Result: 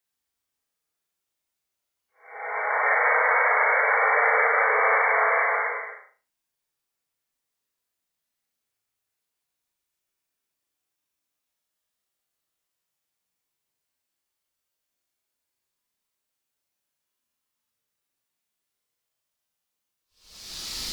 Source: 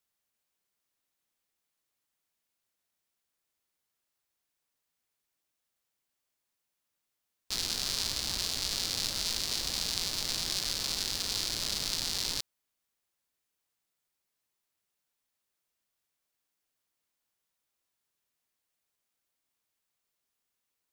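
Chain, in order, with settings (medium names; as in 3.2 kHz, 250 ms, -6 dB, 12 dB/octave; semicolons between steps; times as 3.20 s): painted sound noise, 3.76–4.36 s, 430–2300 Hz -22 dBFS; Paulstretch 4.8×, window 0.25 s, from 3.20 s; flutter echo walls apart 6.4 m, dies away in 0.33 s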